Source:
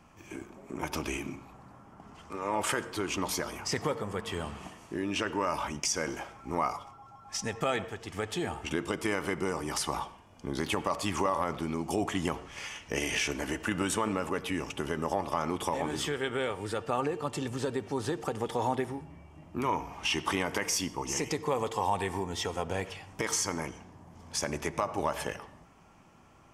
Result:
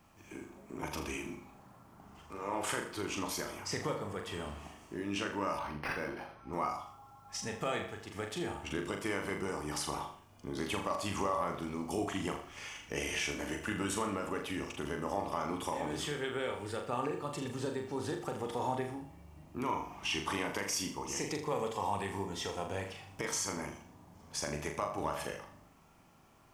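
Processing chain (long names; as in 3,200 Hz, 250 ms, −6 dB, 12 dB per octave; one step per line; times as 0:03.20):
bit reduction 11 bits
flutter between parallel walls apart 6.9 metres, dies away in 0.43 s
0:05.59–0:06.53: linearly interpolated sample-rate reduction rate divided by 6×
level −6 dB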